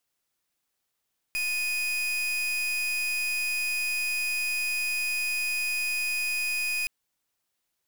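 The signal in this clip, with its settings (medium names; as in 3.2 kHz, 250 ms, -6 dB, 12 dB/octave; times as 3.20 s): pulse 2.49 kHz, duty 38% -28.5 dBFS 5.52 s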